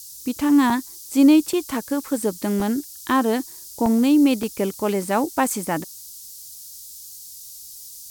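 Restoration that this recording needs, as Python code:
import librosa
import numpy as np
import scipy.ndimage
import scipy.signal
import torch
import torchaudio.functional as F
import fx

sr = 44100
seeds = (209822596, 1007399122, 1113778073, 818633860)

y = fx.fix_interpolate(x, sr, at_s=(0.7, 1.13, 1.53, 2.6, 3.86, 4.43), length_ms=2.5)
y = fx.noise_reduce(y, sr, print_start_s=7.19, print_end_s=7.69, reduce_db=24.0)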